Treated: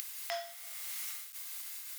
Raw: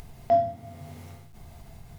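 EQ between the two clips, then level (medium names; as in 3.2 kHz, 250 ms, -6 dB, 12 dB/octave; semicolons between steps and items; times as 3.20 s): high-pass 1.2 kHz 24 dB/octave; tilt EQ +4.5 dB/octave; +3.0 dB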